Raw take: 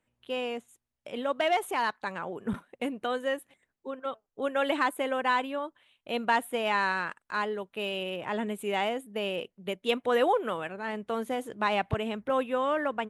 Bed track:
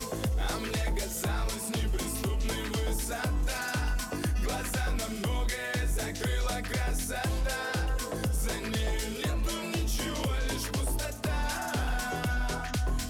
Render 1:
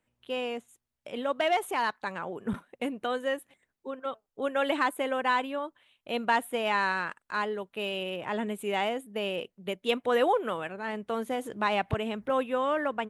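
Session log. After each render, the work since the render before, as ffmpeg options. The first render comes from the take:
-filter_complex "[0:a]asettb=1/sr,asplit=3[a][b][c];[a]atrim=end=11.354[d];[b]atrim=start=11.35:end=12.26,asetpts=PTS-STARTPTS,afade=t=in:d=0.004:c=qsin,afade=t=out:st=0.906:d=0.004:c=qsin,acompressor=mode=upward:threshold=-32dB:ratio=2.5:attack=3.2:release=140:knee=2.83:detection=peak[e];[c]atrim=start=12.256[f];[d][e]acrossfade=d=0.004:c1=hsin:c2=qsin[g];[g][f]acrossfade=d=0.004:c1=qsin:c2=hsin"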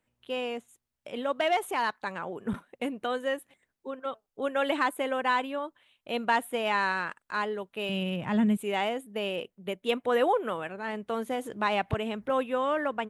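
-filter_complex "[0:a]asettb=1/sr,asplit=3[a][b][c];[a]atrim=end=7.894[d];[b]atrim=start=7.89:end=8.57,asetpts=PTS-STARTPTS,afade=t=in:d=0.004:c=qsin,afade=t=out:st=0.676:d=0.004:c=qsin,lowshelf=f=280:t=q:w=1.5:g=10[e];[c]atrim=start=8.566[f];[d][e]acrossfade=d=0.004:c1=hsin:c2=qsin[g];[g][f]acrossfade=d=0.004:c1=qsin:c2=hsin,asettb=1/sr,asplit=3[h][i][j];[h]atrim=end=9.424[k];[i]atrim=start=9.42:end=10.68,asetpts=PTS-STARTPTS,afade=t=in:d=0.004:c=qsin,afade=t=out:st=1.256:d=0.004:c=qsin,equalizer=f=4.8k:t=o:w=1.4:g=-3.5[l];[j]atrim=start=10.676[m];[k][l]acrossfade=d=0.004:c1=hsin:c2=qsin[n];[n][m]acrossfade=d=0.004:c1=qsin:c2=hsin"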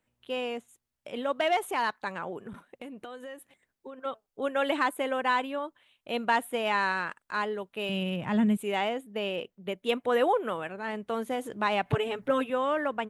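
-filter_complex "[0:a]asettb=1/sr,asplit=3[a][b][c];[a]atrim=end=2.404[d];[b]atrim=start=2.4:end=4.04,asetpts=PTS-STARTPTS,afade=t=in:d=0.004:c=qsin,afade=t=out:st=1.636:d=0.004:c=qsin,acompressor=threshold=-38dB:ratio=10:attack=3.2:release=140:knee=1:detection=peak[e];[c]atrim=start=4.036[f];[d][e]acrossfade=d=0.004:c1=hsin:c2=qsin[g];[g][f]acrossfade=d=0.004:c1=qsin:c2=hsin,asettb=1/sr,asplit=3[h][i][j];[h]atrim=end=8.794[k];[i]atrim=start=8.79:end=9.76,asetpts=PTS-STARTPTS,afade=t=in:d=0.004:c=qsin,afade=t=out:st=0.966:d=0.004:c=qsin,equalizer=f=9.9k:w=1.5:g=-7[l];[j]atrim=start=9.756[m];[k][l]acrossfade=d=0.004:c1=hsin:c2=qsin[n];[n][m]acrossfade=d=0.004:c1=qsin:c2=hsin,asettb=1/sr,asplit=3[o][p][q];[o]atrim=end=11.854[r];[p]atrim=start=11.85:end=12.5,asetpts=PTS-STARTPTS,afade=t=in:d=0.004:c=qsin,afade=t=out:st=0.646:d=0.004:c=qsin,aecho=1:1:7:0.9,atrim=end_sample=28665[s];[q]atrim=start=12.496[t];[r][s]acrossfade=d=0.004:c1=hsin:c2=qsin[u];[u][t]acrossfade=d=0.004:c1=qsin:c2=hsin"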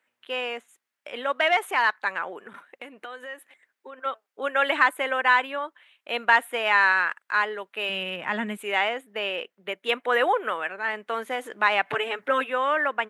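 -af "highpass=350,equalizer=f=1.8k:w=0.84:g=11"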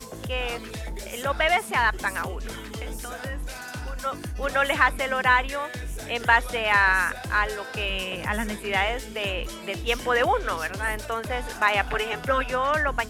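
-filter_complex "[1:a]volume=-4dB[a];[0:a][a]amix=inputs=2:normalize=0"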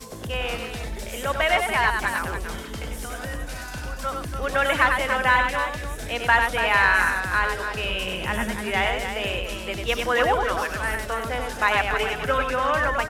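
-af "aecho=1:1:96.21|285.7:0.562|0.398"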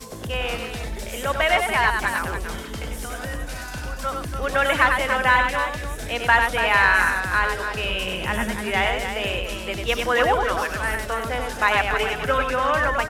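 -af "volume=1.5dB"

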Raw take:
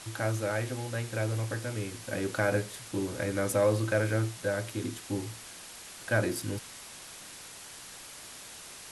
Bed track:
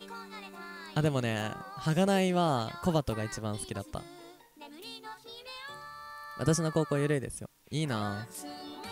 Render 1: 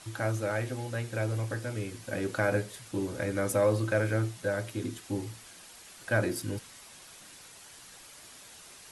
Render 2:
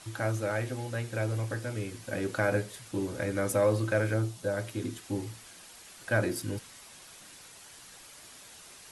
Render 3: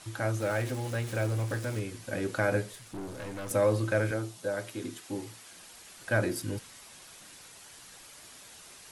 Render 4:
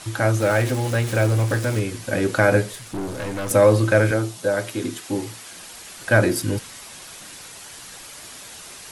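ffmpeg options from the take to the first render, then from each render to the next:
-af "afftdn=nr=6:nf=-47"
-filter_complex "[0:a]asettb=1/sr,asplit=3[a][b][c];[a]atrim=end=4.144[d];[b]atrim=start=4.14:end=4.57,asetpts=PTS-STARTPTS,afade=t=in:d=0.004:c=qsin,afade=t=out:st=0.426:d=0.004:c=qsin,equalizer=f=1.9k:w=1.5:g=-7.5[e];[c]atrim=start=4.566[f];[d][e]acrossfade=d=0.004:c1=hsin:c2=qsin[g];[g][f]acrossfade=d=0.004:c1=qsin:c2=hsin"
-filter_complex "[0:a]asettb=1/sr,asplit=3[a][b][c];[a]atrim=end=0.404[d];[b]atrim=start=0.4:end=1.8,asetpts=PTS-STARTPTS,afade=t=in:d=0.004:c=qsin,afade=t=out:st=1.396:d=0.004:c=qsin,aeval=exprs='val(0)+0.5*0.0106*sgn(val(0))':c=same[e];[c]atrim=start=1.796[f];[d][e]acrossfade=d=0.004:c1=hsin:c2=qsin[g];[g][f]acrossfade=d=0.004:c1=qsin:c2=hsin,asettb=1/sr,asplit=3[h][i][j];[h]atrim=end=2.734[k];[i]atrim=start=2.73:end=3.51,asetpts=PTS-STARTPTS,afade=t=in:d=0.004:c=qsin,afade=t=out:st=0.776:d=0.004:c=qsin,aeval=exprs='(tanh(63.1*val(0)+0.45)-tanh(0.45))/63.1':c=same[l];[j]atrim=start=3.506[m];[k][l]acrossfade=d=0.004:c1=hsin:c2=qsin[n];[n][m]acrossfade=d=0.004:c1=qsin:c2=hsin,asettb=1/sr,asplit=3[o][p][q];[o]atrim=end=4.114[r];[p]atrim=start=4.11:end=5.52,asetpts=PTS-STARTPTS,afade=t=in:d=0.004:c=qsin,afade=t=out:st=1.406:d=0.004:c=qsin,highpass=f=250:p=1[s];[q]atrim=start=5.516[t];[r][s]acrossfade=d=0.004:c1=hsin:c2=qsin[u];[u][t]acrossfade=d=0.004:c1=qsin:c2=hsin"
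-af "volume=11dB"

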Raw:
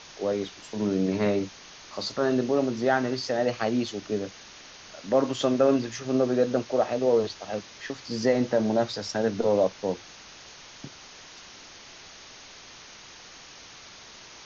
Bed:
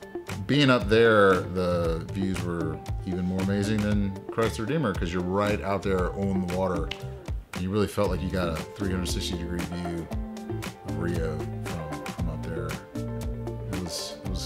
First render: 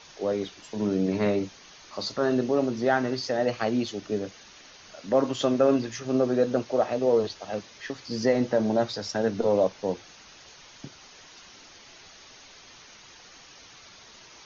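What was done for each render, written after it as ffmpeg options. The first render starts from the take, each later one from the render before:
-af "afftdn=nr=6:nf=-48"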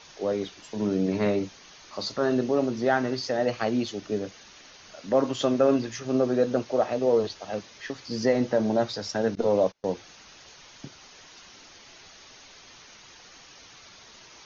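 -filter_complex "[0:a]asettb=1/sr,asplit=3[a][b][c];[a]atrim=end=9.354[d];[b]atrim=start=9.35:end=9.89,asetpts=PTS-STARTPTS,afade=t=in:d=0.004:c=qsin,afade=t=out:st=0.536:d=0.004:c=qsin,agate=range=-29dB:threshold=-35dB:ratio=16:release=100:detection=peak[e];[c]atrim=start=9.886[f];[d][e]acrossfade=d=0.004:c1=hsin:c2=qsin[g];[g][f]acrossfade=d=0.004:c1=qsin:c2=hsin"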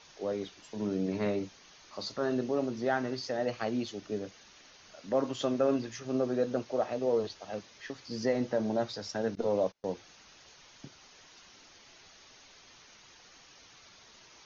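-af "volume=-6.5dB"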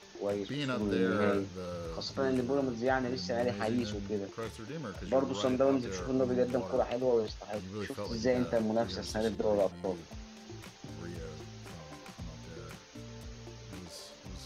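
-filter_complex "[1:a]volume=-14.5dB[a];[0:a][a]amix=inputs=2:normalize=0"

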